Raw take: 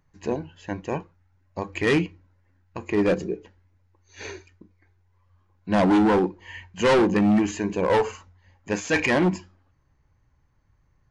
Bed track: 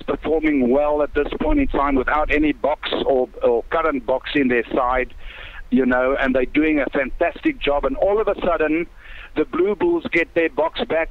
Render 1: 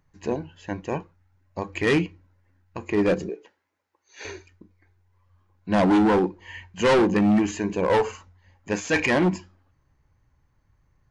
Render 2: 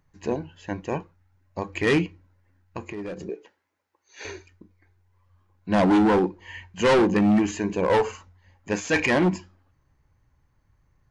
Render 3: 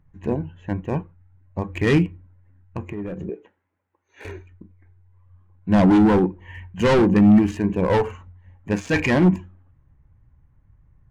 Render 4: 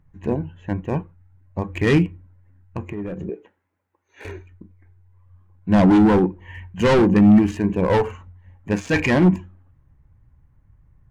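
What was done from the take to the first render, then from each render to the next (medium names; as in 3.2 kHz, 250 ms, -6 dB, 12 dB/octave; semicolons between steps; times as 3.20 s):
3.29–4.25 s: high-pass 440 Hz
2.85–3.29 s: compression, threshold -32 dBFS
local Wiener filter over 9 samples; tone controls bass +10 dB, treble -1 dB
trim +1 dB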